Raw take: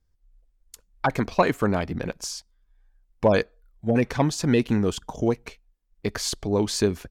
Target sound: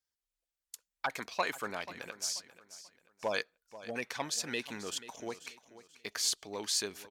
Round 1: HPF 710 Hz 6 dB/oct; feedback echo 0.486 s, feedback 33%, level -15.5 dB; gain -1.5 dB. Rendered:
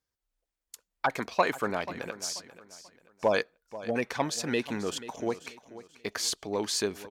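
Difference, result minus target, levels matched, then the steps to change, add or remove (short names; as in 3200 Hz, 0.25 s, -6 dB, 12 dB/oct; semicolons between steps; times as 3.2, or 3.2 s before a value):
1000 Hz band +2.5 dB
change: HPF 2700 Hz 6 dB/oct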